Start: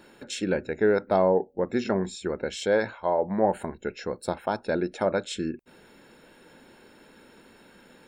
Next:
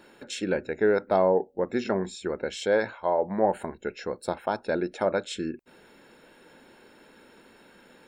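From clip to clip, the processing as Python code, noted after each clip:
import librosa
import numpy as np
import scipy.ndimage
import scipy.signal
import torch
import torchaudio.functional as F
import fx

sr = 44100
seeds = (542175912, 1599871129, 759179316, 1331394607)

y = fx.bass_treble(x, sr, bass_db=-4, treble_db=-2)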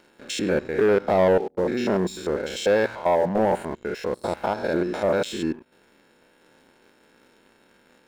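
y = fx.spec_steps(x, sr, hold_ms=100)
y = fx.leveller(y, sr, passes=2)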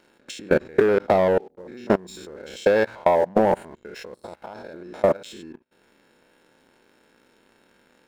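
y = fx.level_steps(x, sr, step_db=21)
y = fx.transient(y, sr, attack_db=5, sustain_db=-2)
y = y * 10.0 ** (2.5 / 20.0)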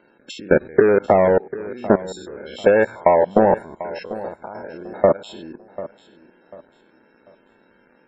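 y = fx.spec_topn(x, sr, count=64)
y = fx.echo_feedback(y, sr, ms=743, feedback_pct=31, wet_db=-16)
y = y * 10.0 ** (4.0 / 20.0)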